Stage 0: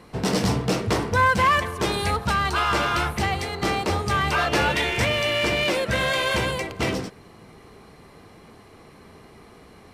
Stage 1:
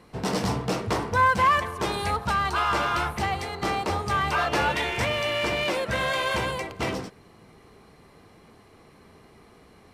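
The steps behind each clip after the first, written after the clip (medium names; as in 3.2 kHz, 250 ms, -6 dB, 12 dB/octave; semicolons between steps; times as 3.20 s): dynamic bell 950 Hz, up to +5 dB, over -37 dBFS, Q 1.1; trim -5 dB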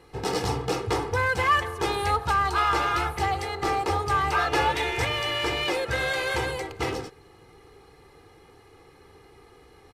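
comb 2.4 ms, depth 70%; trim -1.5 dB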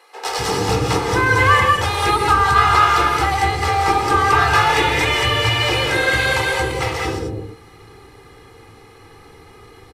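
bands offset in time highs, lows 250 ms, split 530 Hz; gated-style reverb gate 230 ms rising, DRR 0 dB; trim +7 dB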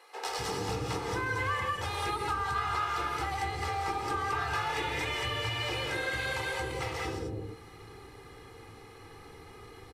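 compression 2.5:1, threshold -29 dBFS, peak gain reduction 13.5 dB; trim -6 dB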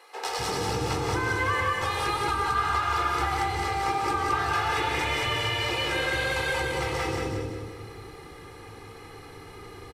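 feedback delay 180 ms, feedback 44%, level -4 dB; trim +4 dB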